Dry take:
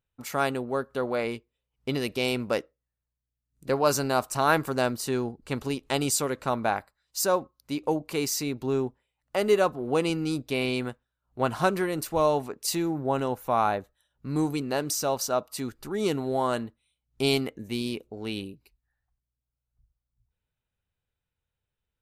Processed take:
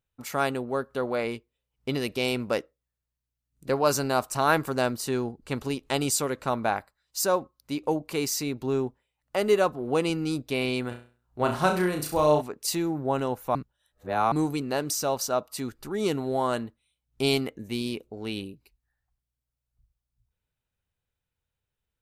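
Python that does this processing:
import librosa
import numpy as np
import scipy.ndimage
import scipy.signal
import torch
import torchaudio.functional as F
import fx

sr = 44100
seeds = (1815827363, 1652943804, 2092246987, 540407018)

y = fx.room_flutter(x, sr, wall_m=5.7, rt60_s=0.39, at=(10.9, 12.4), fade=0.02)
y = fx.edit(y, sr, fx.reverse_span(start_s=13.55, length_s=0.77), tone=tone)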